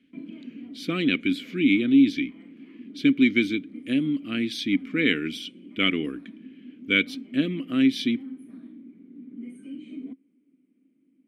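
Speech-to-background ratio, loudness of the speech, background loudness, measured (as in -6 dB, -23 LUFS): 19.0 dB, -24.0 LUFS, -43.0 LUFS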